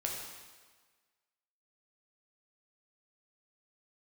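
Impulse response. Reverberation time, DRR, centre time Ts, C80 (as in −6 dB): 1.5 s, −1.5 dB, 67 ms, 4.0 dB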